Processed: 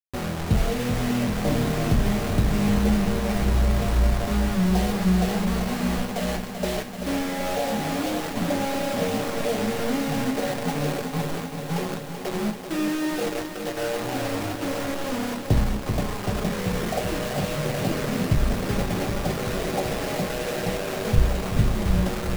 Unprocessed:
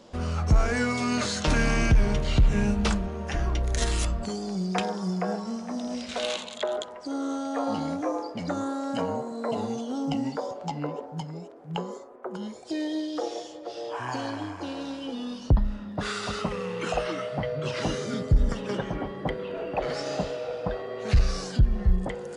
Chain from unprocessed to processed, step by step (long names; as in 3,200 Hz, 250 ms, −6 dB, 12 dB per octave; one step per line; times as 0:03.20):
elliptic low-pass filter 810 Hz, stop band 40 dB
in parallel at −0.5 dB: downward compressor 12 to 1, threshold −35 dBFS, peak gain reduction 19 dB
on the sum: bit reduction 5 bits
convolution reverb RT60 0.25 s, pre-delay 5 ms, DRR 4.5 dB
feedback echo at a low word length 385 ms, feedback 80%, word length 7 bits, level −8 dB
level −1.5 dB